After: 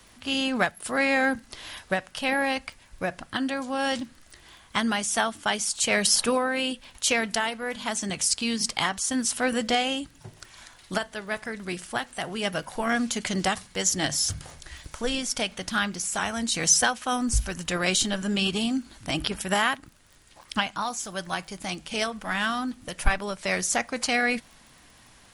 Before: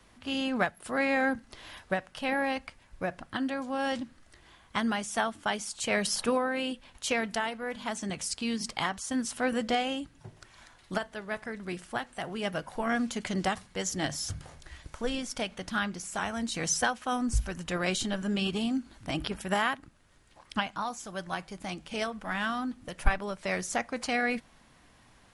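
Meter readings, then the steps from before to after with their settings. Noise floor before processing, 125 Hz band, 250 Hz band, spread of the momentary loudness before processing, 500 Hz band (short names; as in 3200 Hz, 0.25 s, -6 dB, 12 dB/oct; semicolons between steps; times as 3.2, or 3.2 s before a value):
-60 dBFS, +3.0 dB, +3.0 dB, 9 LU, +3.0 dB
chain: in parallel at -7.5 dB: soft clip -18.5 dBFS, distortion -18 dB; on the sum: crackle 22/s -48 dBFS; high shelf 2800 Hz +8.5 dB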